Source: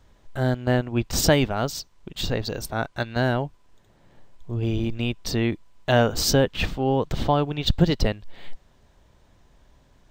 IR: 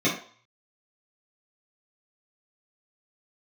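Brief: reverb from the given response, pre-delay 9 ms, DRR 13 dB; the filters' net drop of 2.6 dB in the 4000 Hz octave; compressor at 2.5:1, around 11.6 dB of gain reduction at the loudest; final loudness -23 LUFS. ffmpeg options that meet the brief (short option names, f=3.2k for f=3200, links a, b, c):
-filter_complex "[0:a]equalizer=f=4k:t=o:g=-3.5,acompressor=threshold=-31dB:ratio=2.5,asplit=2[a][b];[1:a]atrim=start_sample=2205,adelay=9[c];[b][c]afir=irnorm=-1:irlink=0,volume=-27.5dB[d];[a][d]amix=inputs=2:normalize=0,volume=9.5dB"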